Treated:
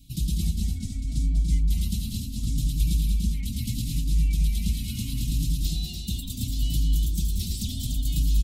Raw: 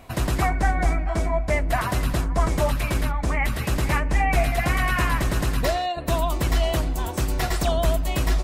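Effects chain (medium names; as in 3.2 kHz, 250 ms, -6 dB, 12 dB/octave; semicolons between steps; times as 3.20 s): elliptic band-stop 230–3500 Hz, stop band 40 dB; peak limiter -18.5 dBFS, peak gain reduction 6.5 dB; on a send: loudspeakers at several distances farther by 67 m -7 dB, 100 m -6 dB; on the sum: endless flanger 4 ms +0.73 Hz; trim +2.5 dB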